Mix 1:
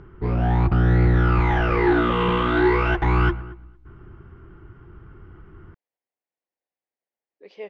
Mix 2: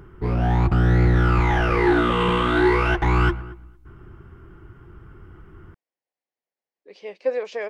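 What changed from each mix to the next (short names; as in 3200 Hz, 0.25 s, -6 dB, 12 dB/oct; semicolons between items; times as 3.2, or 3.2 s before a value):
speech: entry -0.55 s; master: remove air absorption 140 m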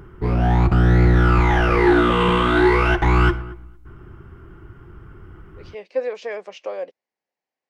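speech: entry -1.30 s; reverb: on, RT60 0.35 s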